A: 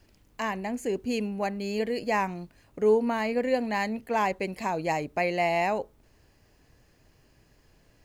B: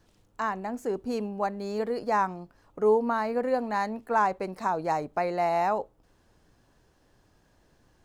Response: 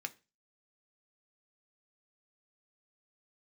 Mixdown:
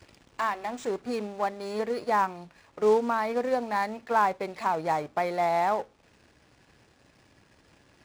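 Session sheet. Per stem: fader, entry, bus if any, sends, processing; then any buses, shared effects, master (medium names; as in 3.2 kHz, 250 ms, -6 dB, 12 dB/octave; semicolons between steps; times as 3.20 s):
-10.5 dB, 0.00 s, send -5 dB, compression, threshold -34 dBFS, peak gain reduction 15.5 dB; waveshaping leveller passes 5; auto duck -11 dB, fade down 1.90 s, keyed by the second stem
+0.5 dB, 0.00 s, polarity flipped, no send, companded quantiser 6-bit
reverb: on, RT60 0.30 s, pre-delay 3 ms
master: high-pass 61 Hz; decimation joined by straight lines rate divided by 3×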